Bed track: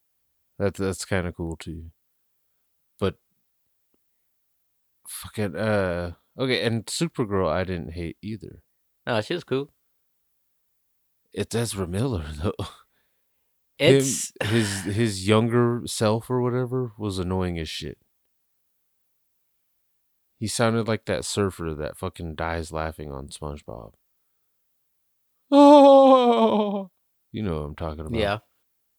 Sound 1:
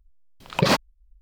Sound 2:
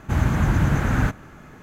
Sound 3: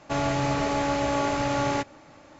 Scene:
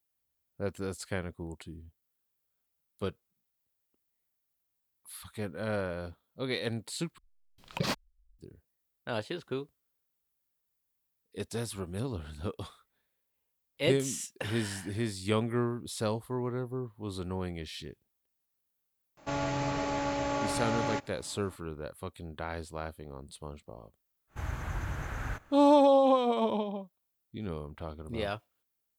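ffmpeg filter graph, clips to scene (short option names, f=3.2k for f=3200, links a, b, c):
-filter_complex "[0:a]volume=-10dB[a];[1:a]equalizer=f=700:w=0.34:g=-4.5[b];[2:a]equalizer=f=200:w=0.93:g=-12.5[c];[a]asplit=2[d][e];[d]atrim=end=7.184[f];[b]atrim=end=1.21,asetpts=PTS-STARTPTS,volume=-10dB[g];[e]atrim=start=8.386[h];[3:a]atrim=end=2.39,asetpts=PTS-STARTPTS,volume=-6.5dB,afade=t=in:d=0.004:c=hsin,afade=t=out:st=2.386:d=0.004:c=hsin,adelay=19170[i];[c]atrim=end=1.62,asetpts=PTS-STARTPTS,volume=-12.5dB,afade=t=in:d=0.1,afade=t=out:st=1.52:d=0.1,adelay=24270[j];[f][g]acrossfade=d=0.004:c1=hsin:c2=hsin[k];[k][h]acrossfade=d=0.004:c1=hsin:c2=hsin[l];[l][i][j]amix=inputs=3:normalize=0"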